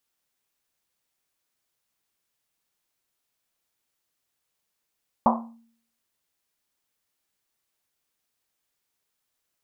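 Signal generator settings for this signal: Risset drum, pitch 230 Hz, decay 0.60 s, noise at 870 Hz, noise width 500 Hz, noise 55%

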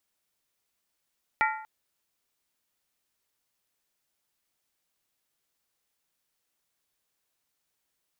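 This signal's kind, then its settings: skin hit length 0.24 s, lowest mode 872 Hz, modes 5, decay 0.66 s, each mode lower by 1.5 dB, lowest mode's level -22.5 dB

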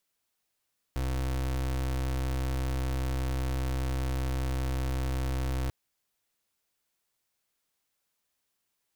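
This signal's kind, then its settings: pulse 65.1 Hz, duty 32% -30 dBFS 4.74 s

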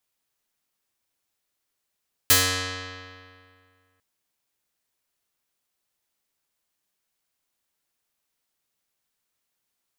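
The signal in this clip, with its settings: plucked string F#2, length 1.70 s, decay 2.15 s, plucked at 0.48, medium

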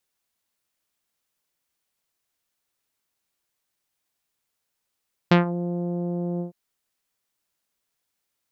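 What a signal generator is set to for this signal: synth note saw F3 24 dB/oct, low-pass 610 Hz, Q 0.87, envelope 3 oct, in 0.22 s, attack 6.7 ms, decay 0.13 s, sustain -14 dB, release 0.12 s, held 1.09 s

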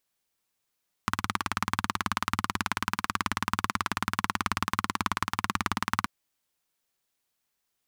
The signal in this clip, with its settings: single-cylinder engine model, steady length 4.98 s, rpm 2200, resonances 100/200/1100 Hz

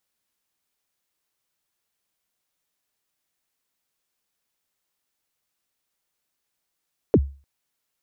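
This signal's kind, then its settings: kick drum length 0.30 s, from 530 Hz, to 69 Hz, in 51 ms, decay 0.35 s, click off, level -8.5 dB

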